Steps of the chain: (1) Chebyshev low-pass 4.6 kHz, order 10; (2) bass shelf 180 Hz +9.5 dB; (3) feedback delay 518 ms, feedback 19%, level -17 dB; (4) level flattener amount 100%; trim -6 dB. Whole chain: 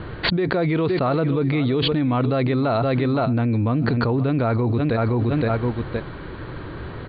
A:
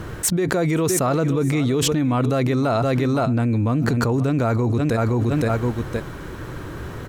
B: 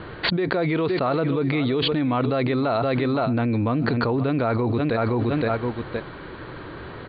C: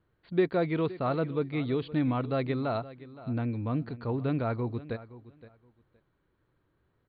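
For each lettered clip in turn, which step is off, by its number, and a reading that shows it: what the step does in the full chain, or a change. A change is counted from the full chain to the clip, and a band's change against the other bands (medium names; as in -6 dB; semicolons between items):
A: 1, 4 kHz band -2.5 dB; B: 2, 125 Hz band -4.0 dB; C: 4, crest factor change +3.0 dB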